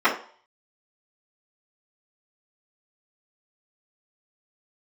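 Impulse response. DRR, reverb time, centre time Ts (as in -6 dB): -13.5 dB, 0.50 s, 20 ms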